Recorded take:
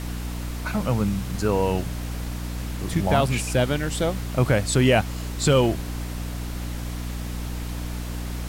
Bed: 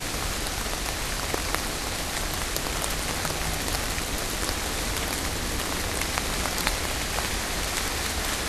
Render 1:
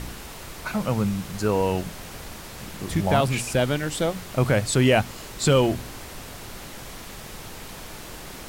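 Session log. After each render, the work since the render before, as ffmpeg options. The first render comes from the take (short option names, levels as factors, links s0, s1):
-af "bandreject=f=60:t=h:w=4,bandreject=f=120:t=h:w=4,bandreject=f=180:t=h:w=4,bandreject=f=240:t=h:w=4,bandreject=f=300:t=h:w=4"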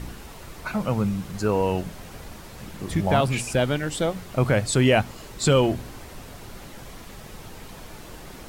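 -af "afftdn=nr=6:nf=-40"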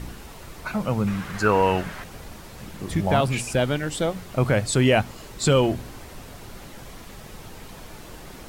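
-filter_complex "[0:a]asettb=1/sr,asplit=3[s0][s1][s2];[s0]atrim=end=1.074[s3];[s1]atrim=start=1.07:end=2.04,asetpts=PTS-STARTPTS,afade=t=in:d=0.004:c=qsin,afade=t=out:st=0.966:d=0.004:c=qsin,equalizer=f=1600:t=o:w=1.7:g=13[s4];[s2]atrim=start=2.036[s5];[s3][s4]acrossfade=d=0.004:c1=hsin:c2=qsin[s6];[s6][s5]acrossfade=d=0.004:c1=qsin:c2=hsin"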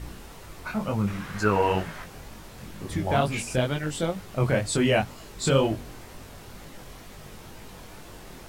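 -af "flanger=delay=18.5:depth=5.4:speed=2.1"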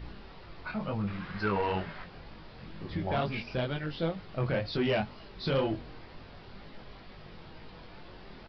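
-af "aresample=11025,asoftclip=type=tanh:threshold=0.126,aresample=44100,flanger=delay=4.6:depth=1.9:regen=79:speed=0.59:shape=triangular"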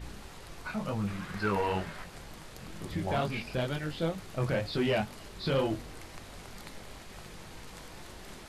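-filter_complex "[1:a]volume=0.0668[s0];[0:a][s0]amix=inputs=2:normalize=0"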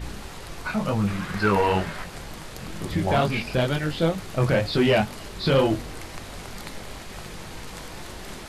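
-af "volume=2.82"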